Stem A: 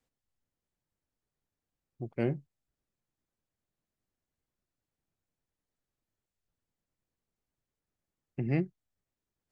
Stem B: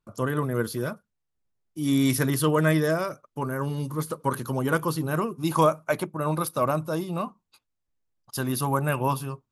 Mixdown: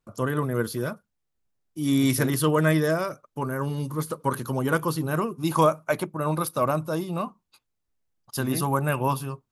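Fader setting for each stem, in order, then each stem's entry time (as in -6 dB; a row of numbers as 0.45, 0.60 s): -3.5, +0.5 dB; 0.00, 0.00 s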